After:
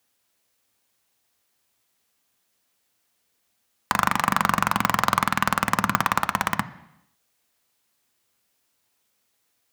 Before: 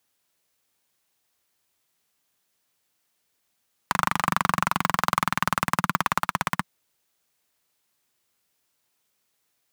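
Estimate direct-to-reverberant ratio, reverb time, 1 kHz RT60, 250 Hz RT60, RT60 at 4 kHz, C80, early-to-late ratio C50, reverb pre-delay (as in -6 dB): 11.0 dB, 0.85 s, 0.85 s, 0.85 s, 0.85 s, 18.0 dB, 16.0 dB, 3 ms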